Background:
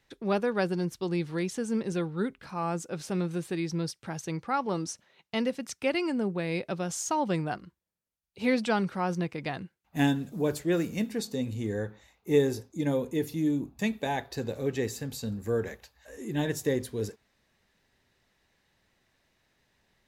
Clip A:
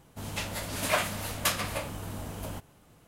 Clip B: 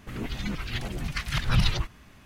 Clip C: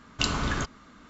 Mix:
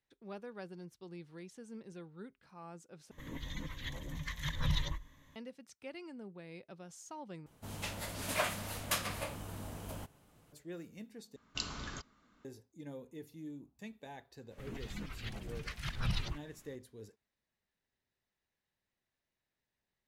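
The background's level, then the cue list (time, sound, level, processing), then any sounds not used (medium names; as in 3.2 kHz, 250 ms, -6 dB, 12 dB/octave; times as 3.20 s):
background -19 dB
3.11 s: replace with B -12 dB + rippled EQ curve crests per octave 1.1, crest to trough 12 dB
7.46 s: replace with A -6.5 dB
11.36 s: replace with C -16.5 dB + dynamic bell 4.9 kHz, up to +8 dB, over -44 dBFS, Q 0.9
14.51 s: add B -12 dB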